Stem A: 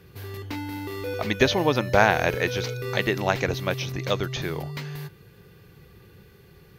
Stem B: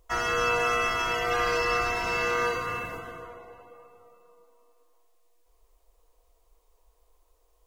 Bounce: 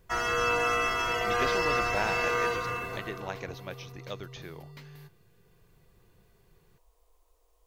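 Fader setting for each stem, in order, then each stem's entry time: -14.0 dB, -1.5 dB; 0.00 s, 0.00 s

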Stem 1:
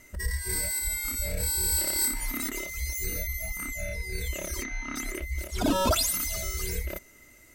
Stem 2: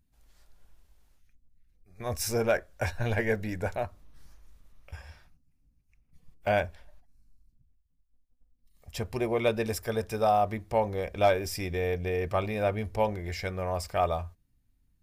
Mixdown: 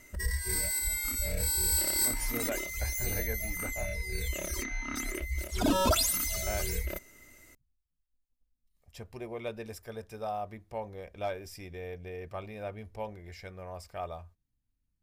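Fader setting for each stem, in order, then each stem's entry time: -1.5 dB, -11.5 dB; 0.00 s, 0.00 s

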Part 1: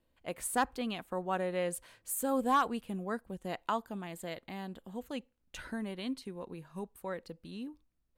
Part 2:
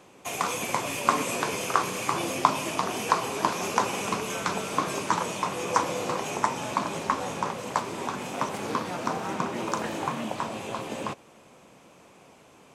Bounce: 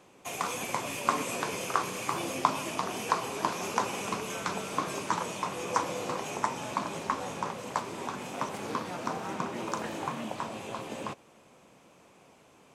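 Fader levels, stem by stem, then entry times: -18.0 dB, -4.5 dB; 0.00 s, 0.00 s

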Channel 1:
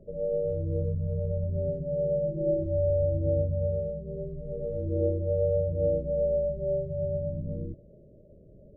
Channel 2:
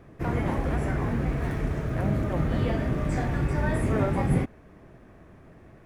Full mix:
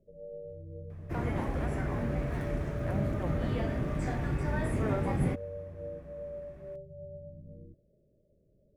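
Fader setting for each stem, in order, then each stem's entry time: -15.0 dB, -5.5 dB; 0.00 s, 0.90 s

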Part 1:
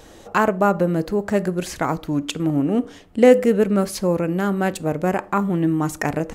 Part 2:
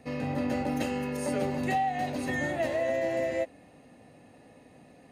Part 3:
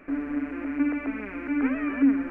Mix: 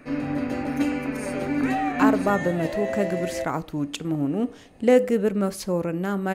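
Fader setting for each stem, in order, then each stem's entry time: -5.0 dB, 0.0 dB, 0.0 dB; 1.65 s, 0.00 s, 0.00 s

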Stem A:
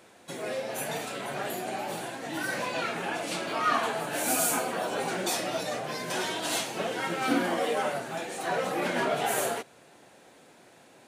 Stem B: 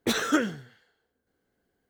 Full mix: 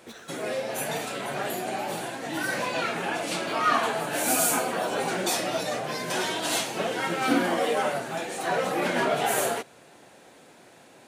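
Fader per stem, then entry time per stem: +3.0 dB, -18.5 dB; 0.00 s, 0.00 s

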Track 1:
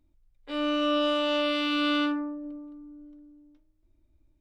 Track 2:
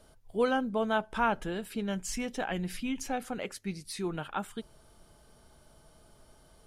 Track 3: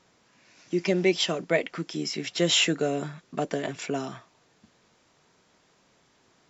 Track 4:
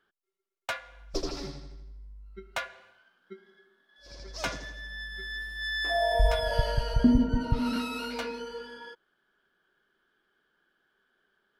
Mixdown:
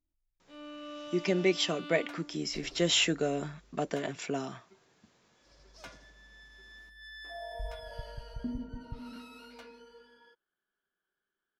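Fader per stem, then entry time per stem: -18.5 dB, mute, -4.0 dB, -16.0 dB; 0.00 s, mute, 0.40 s, 1.40 s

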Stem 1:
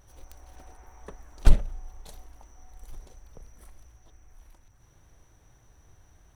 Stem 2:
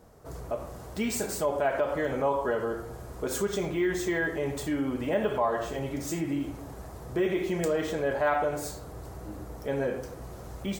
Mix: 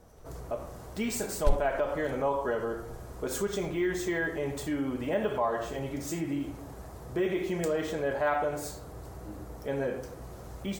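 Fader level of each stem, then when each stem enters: -9.5 dB, -2.0 dB; 0.00 s, 0.00 s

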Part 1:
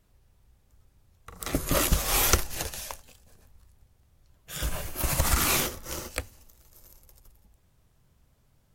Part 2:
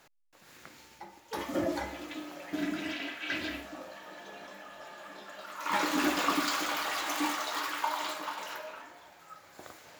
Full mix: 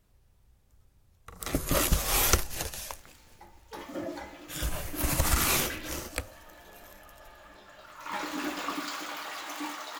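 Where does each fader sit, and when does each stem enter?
-1.5 dB, -5.5 dB; 0.00 s, 2.40 s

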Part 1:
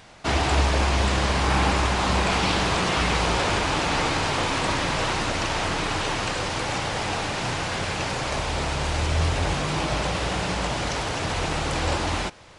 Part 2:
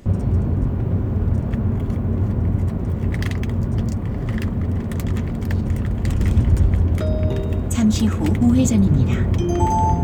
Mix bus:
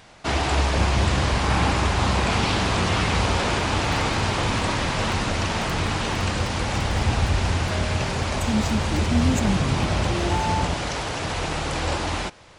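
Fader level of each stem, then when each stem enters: -0.5 dB, -7.0 dB; 0.00 s, 0.70 s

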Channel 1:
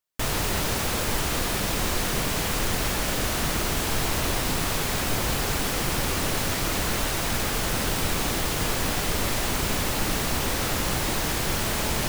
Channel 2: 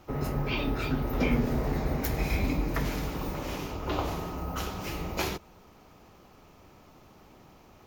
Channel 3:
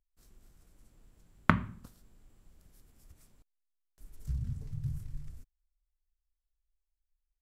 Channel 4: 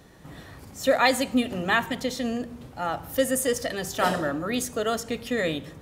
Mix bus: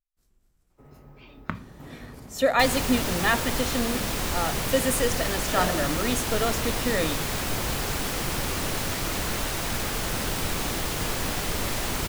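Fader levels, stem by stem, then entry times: -2.5 dB, -19.5 dB, -7.5 dB, -0.5 dB; 2.40 s, 0.70 s, 0.00 s, 1.55 s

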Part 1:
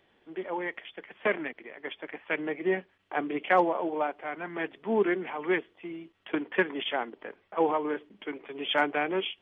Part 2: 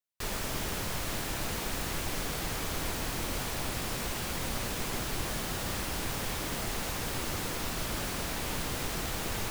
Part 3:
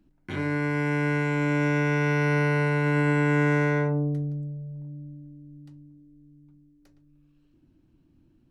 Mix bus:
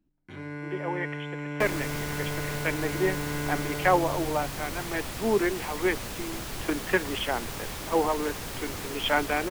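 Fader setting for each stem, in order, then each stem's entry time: +1.0 dB, -2.0 dB, -10.5 dB; 0.35 s, 1.40 s, 0.00 s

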